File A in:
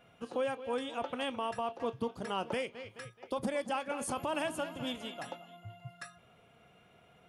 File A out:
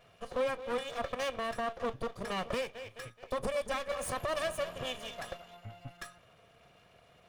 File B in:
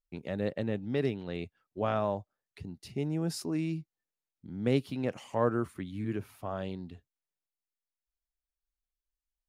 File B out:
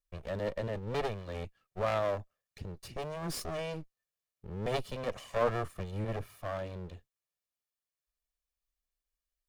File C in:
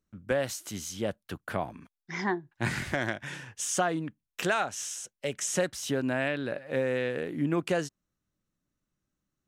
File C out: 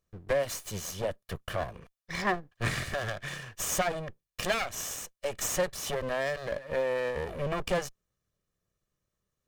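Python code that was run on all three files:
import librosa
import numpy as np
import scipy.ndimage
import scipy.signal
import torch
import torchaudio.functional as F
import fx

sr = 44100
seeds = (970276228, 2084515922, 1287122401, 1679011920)

y = fx.lower_of_two(x, sr, delay_ms=1.7)
y = y * librosa.db_to_amplitude(2.0)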